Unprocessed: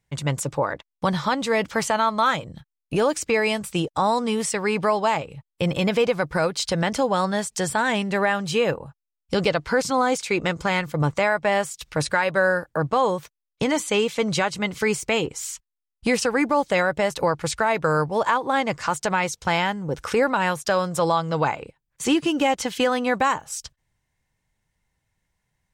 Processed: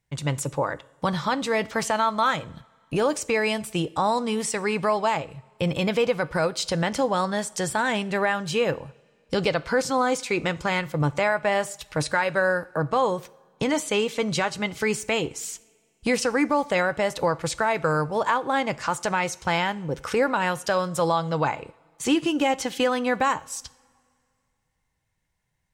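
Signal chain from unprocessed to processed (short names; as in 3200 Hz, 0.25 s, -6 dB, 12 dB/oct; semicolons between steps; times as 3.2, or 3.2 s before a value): two-slope reverb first 0.55 s, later 2.4 s, from -18 dB, DRR 16 dB; gain -2 dB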